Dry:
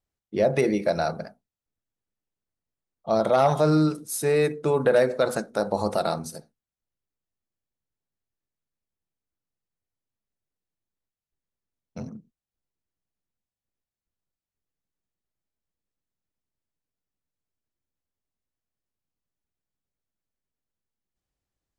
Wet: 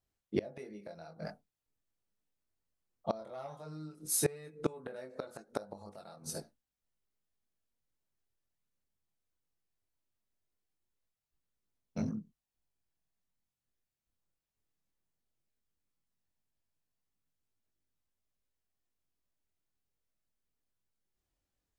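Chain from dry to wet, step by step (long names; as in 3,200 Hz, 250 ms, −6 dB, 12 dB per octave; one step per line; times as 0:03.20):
multi-voice chorus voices 2, 0.17 Hz, delay 22 ms, depth 3.4 ms
gate with flip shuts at −20 dBFS, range −25 dB
level +2.5 dB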